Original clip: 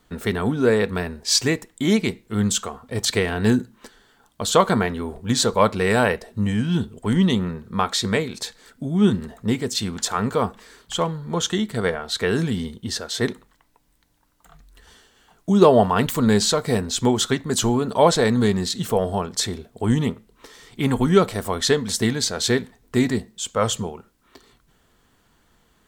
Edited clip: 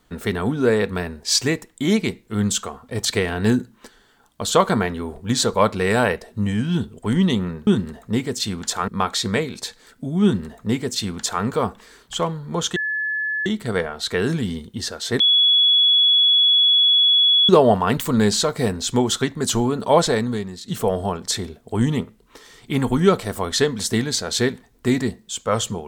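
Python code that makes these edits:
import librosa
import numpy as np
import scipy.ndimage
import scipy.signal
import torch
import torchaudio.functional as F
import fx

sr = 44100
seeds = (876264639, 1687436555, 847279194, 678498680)

y = fx.edit(x, sr, fx.duplicate(start_s=9.02, length_s=1.21, to_s=7.67),
    fx.insert_tone(at_s=11.55, length_s=0.7, hz=1720.0, db=-21.0),
    fx.bleep(start_s=13.29, length_s=2.29, hz=3380.0, db=-12.0),
    fx.fade_out_to(start_s=18.17, length_s=0.6, curve='qua', floor_db=-12.0), tone=tone)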